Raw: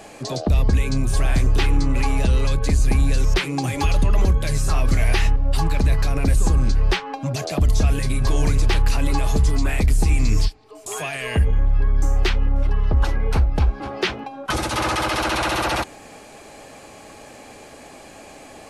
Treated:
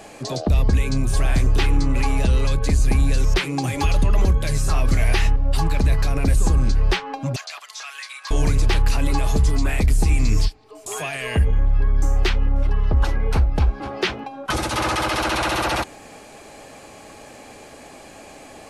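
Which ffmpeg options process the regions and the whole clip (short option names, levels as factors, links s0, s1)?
-filter_complex "[0:a]asettb=1/sr,asplit=3[s0][s1][s2];[s0]atrim=end=7.364[s3];[s1]atrim=start=7.36:end=8.31,asetpts=PTS-STARTPTS,afade=t=in:d=0.004:c=qsin,afade=t=out:st=0.946:d=0.004:c=qsin,acrossover=split=6700[s4][s5];[s5]acompressor=threshold=0.00224:ratio=4:attack=1:release=60[s6];[s4][s6]amix=inputs=2:normalize=0,highpass=f=1100:w=0.5412,highpass=f=1100:w=1.3066[s7];[s2]atrim=start=8.306[s8];[s3][s7]acrossfade=d=0.004:c1=hsin:c2=qsin[s9];[s9][s8]acrossfade=d=0.004:c1=qsin:c2=hsin"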